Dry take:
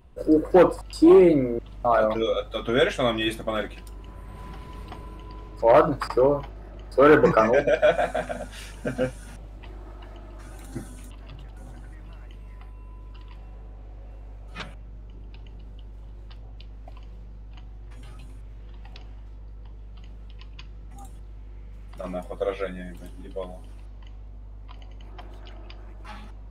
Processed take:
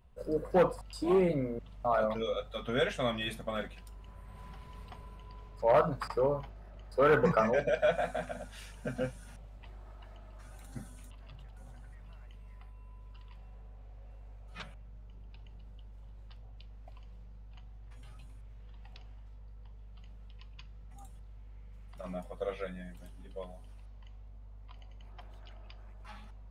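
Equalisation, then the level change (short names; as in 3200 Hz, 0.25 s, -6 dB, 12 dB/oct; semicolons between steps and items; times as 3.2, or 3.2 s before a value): dynamic EQ 200 Hz, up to +5 dB, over -38 dBFS, Q 1; bell 320 Hz -15 dB 0.37 oct; -8.5 dB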